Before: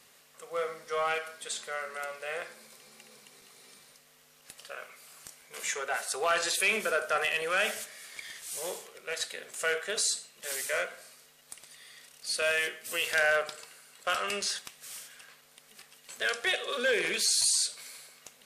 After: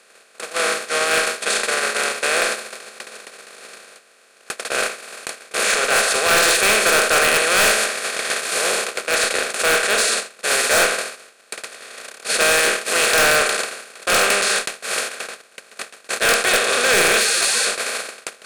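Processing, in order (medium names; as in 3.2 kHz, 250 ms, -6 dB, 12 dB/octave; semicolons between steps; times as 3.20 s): spectral levelling over time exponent 0.2; gate -17 dBFS, range -49 dB; Chebyshev shaper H 5 -17 dB, 8 -26 dB, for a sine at -2.5 dBFS; wavefolder -13 dBFS; loudness maximiser +23 dB; trim -8.5 dB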